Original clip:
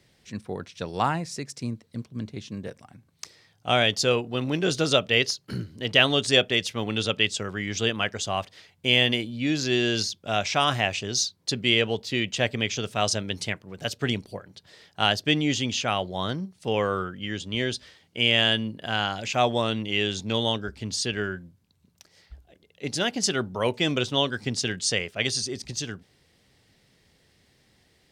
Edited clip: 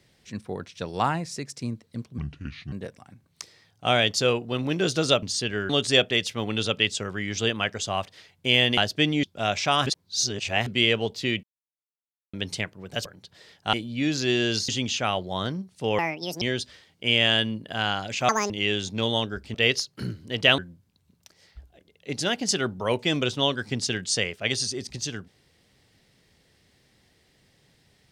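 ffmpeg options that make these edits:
ffmpeg -i in.wav -filter_complex "[0:a]asplit=20[link_01][link_02][link_03][link_04][link_05][link_06][link_07][link_08][link_09][link_10][link_11][link_12][link_13][link_14][link_15][link_16][link_17][link_18][link_19][link_20];[link_01]atrim=end=2.184[link_21];[link_02]atrim=start=2.18:end=2.55,asetpts=PTS-STARTPTS,asetrate=29988,aresample=44100[link_22];[link_03]atrim=start=2.546:end=5.052[link_23];[link_04]atrim=start=20.858:end=21.332[link_24];[link_05]atrim=start=6.088:end=9.172[link_25];[link_06]atrim=start=15.058:end=15.522[link_26];[link_07]atrim=start=10.118:end=10.752[link_27];[link_08]atrim=start=10.748:end=11.552,asetpts=PTS-STARTPTS,areverse[link_28];[link_09]atrim=start=11.548:end=12.32,asetpts=PTS-STARTPTS,afade=type=out:start_time=0.768:duration=0.004:curve=hsin[link_29];[link_10]atrim=start=12.32:end=13.22,asetpts=PTS-STARTPTS,volume=0[link_30];[link_11]atrim=start=13.22:end=13.942,asetpts=PTS-STARTPTS,afade=type=in:duration=0.004:curve=hsin[link_31];[link_12]atrim=start=14.378:end=15.062[link_32];[link_13]atrim=start=9.168:end=10.122[link_33];[link_14]atrim=start=15.518:end=16.824[link_34];[link_15]atrim=start=16.82:end=17.55,asetpts=PTS-STARTPTS,asetrate=74529,aresample=44100,atrim=end_sample=19049,asetpts=PTS-STARTPTS[link_35];[link_16]atrim=start=17.546:end=19.424[link_36];[link_17]atrim=start=19.42:end=19.82,asetpts=PTS-STARTPTS,asetrate=81585,aresample=44100,atrim=end_sample=9535,asetpts=PTS-STARTPTS[link_37];[link_18]atrim=start=19.816:end=20.862[link_38];[link_19]atrim=start=5.048:end=6.092[link_39];[link_20]atrim=start=21.328[link_40];[link_21][link_22]acrossfade=duration=0.004:curve1=hsin:curve2=hsin[link_41];[link_41][link_23]acrossfade=duration=0.004:curve1=hsin:curve2=hsin[link_42];[link_42][link_24]acrossfade=duration=0.004:curve1=hsin:curve2=hsin[link_43];[link_43][link_25]acrossfade=duration=0.004:curve1=hsin:curve2=hsin[link_44];[link_44][link_26]acrossfade=duration=0.004:curve1=hsin:curve2=hsin[link_45];[link_45][link_27]acrossfade=duration=0.004:curve1=hsin:curve2=hsin[link_46];[link_46][link_28]acrossfade=duration=0.004:curve1=hsin:curve2=hsin[link_47];[link_29][link_30][link_31]concat=n=3:v=0:a=1[link_48];[link_47][link_48]acrossfade=duration=0.004:curve1=hsin:curve2=hsin[link_49];[link_49][link_32]acrossfade=duration=0.004:curve1=hsin:curve2=hsin[link_50];[link_50][link_33]acrossfade=duration=0.004:curve1=hsin:curve2=hsin[link_51];[link_51][link_34]acrossfade=duration=0.004:curve1=hsin:curve2=hsin[link_52];[link_52][link_35]acrossfade=duration=0.004:curve1=hsin:curve2=hsin[link_53];[link_53][link_36]acrossfade=duration=0.004:curve1=hsin:curve2=hsin[link_54];[link_54][link_37]acrossfade=duration=0.004:curve1=hsin:curve2=hsin[link_55];[link_55][link_38]acrossfade=duration=0.004:curve1=hsin:curve2=hsin[link_56];[link_56][link_39]acrossfade=duration=0.004:curve1=hsin:curve2=hsin[link_57];[link_57][link_40]acrossfade=duration=0.004:curve1=hsin:curve2=hsin" out.wav

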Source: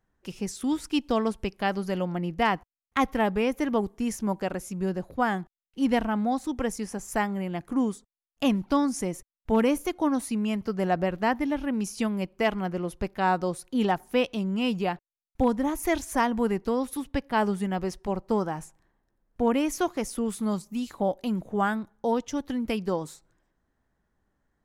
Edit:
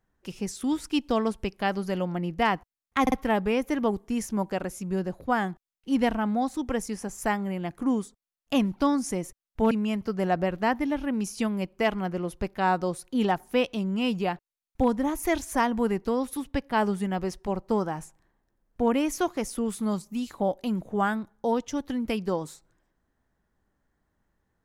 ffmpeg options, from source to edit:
ffmpeg -i in.wav -filter_complex "[0:a]asplit=4[link_01][link_02][link_03][link_04];[link_01]atrim=end=3.072[link_05];[link_02]atrim=start=3.018:end=3.072[link_06];[link_03]atrim=start=3.018:end=9.612[link_07];[link_04]atrim=start=10.308[link_08];[link_05][link_06]acrossfade=duration=0.004:curve1=hsin:curve2=hsin[link_09];[link_09][link_07]acrossfade=duration=0.004:curve1=hsin:curve2=hsin[link_10];[link_10][link_08]acrossfade=duration=0.004:curve1=hsin:curve2=hsin" out.wav

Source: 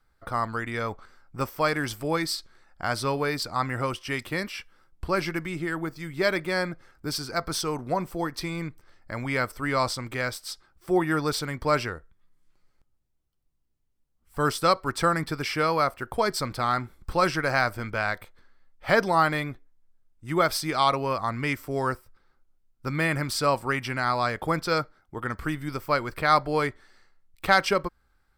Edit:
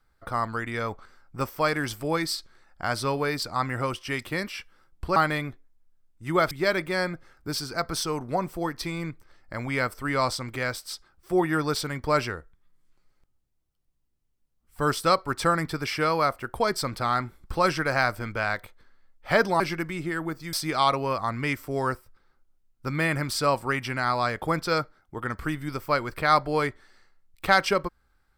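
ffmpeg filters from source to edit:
ffmpeg -i in.wav -filter_complex "[0:a]asplit=5[link_01][link_02][link_03][link_04][link_05];[link_01]atrim=end=5.162[link_06];[link_02]atrim=start=19.178:end=20.532[link_07];[link_03]atrim=start=6.088:end=19.182[link_08];[link_04]atrim=start=5.158:end=6.092[link_09];[link_05]atrim=start=20.528[link_10];[link_06][link_07]acrossfade=duration=0.004:curve1=hsin:curve2=hsin[link_11];[link_11][link_08]acrossfade=duration=0.004:curve1=hsin:curve2=hsin[link_12];[link_12][link_09]acrossfade=duration=0.004:curve1=hsin:curve2=hsin[link_13];[link_13][link_10]acrossfade=duration=0.004:curve1=hsin:curve2=hsin" out.wav

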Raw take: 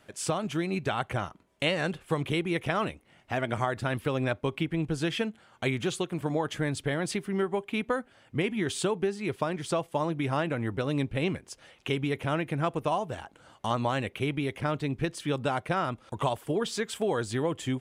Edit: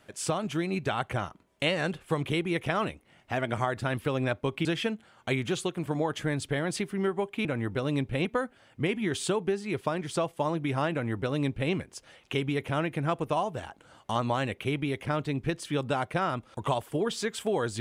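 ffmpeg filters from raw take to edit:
ffmpeg -i in.wav -filter_complex "[0:a]asplit=4[link_01][link_02][link_03][link_04];[link_01]atrim=end=4.652[link_05];[link_02]atrim=start=4.998:end=7.802[link_06];[link_03]atrim=start=10.468:end=11.272[link_07];[link_04]atrim=start=7.798[link_08];[link_05][link_06]acrossfade=duration=0.004:curve1=hsin:curve2=hsin[link_09];[link_09][link_07]acrossfade=duration=0.004:curve1=hsin:curve2=hsin[link_10];[link_10][link_08]acrossfade=duration=0.004:curve1=hsin:curve2=hsin" out.wav

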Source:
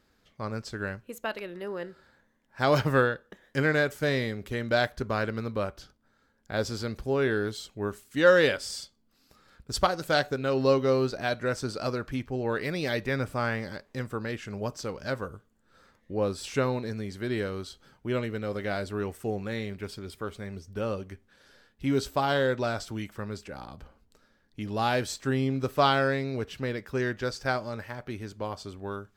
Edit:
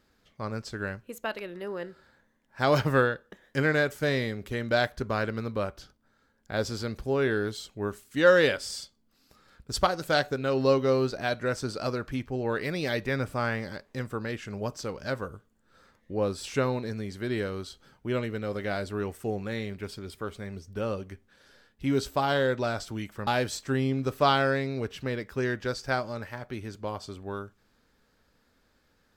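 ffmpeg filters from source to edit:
ffmpeg -i in.wav -filter_complex "[0:a]asplit=2[link_01][link_02];[link_01]atrim=end=23.272[link_03];[link_02]atrim=start=24.838[link_04];[link_03][link_04]acrossfade=duration=0.004:curve1=hsin:curve2=hsin" out.wav

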